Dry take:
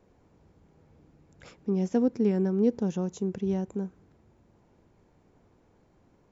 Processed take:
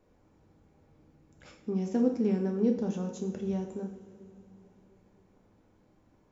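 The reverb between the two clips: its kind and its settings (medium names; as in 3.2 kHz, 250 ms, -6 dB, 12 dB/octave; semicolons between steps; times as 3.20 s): two-slope reverb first 0.56 s, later 3.8 s, from -18 dB, DRR 1.5 dB; trim -4.5 dB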